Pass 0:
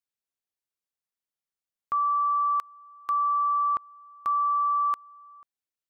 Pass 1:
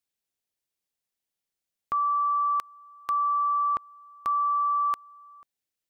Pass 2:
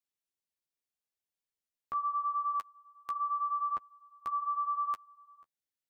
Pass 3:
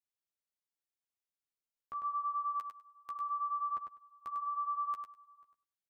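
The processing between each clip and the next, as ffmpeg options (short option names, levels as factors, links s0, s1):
-af "equalizer=f=1200:w=1.5:g=-5.5,volume=1.78"
-af "flanger=delay=9.1:depth=5.3:regen=-16:speed=0.79:shape=triangular,volume=0.596"
-af "aecho=1:1:100|200|300:0.501|0.0752|0.0113,volume=0.447"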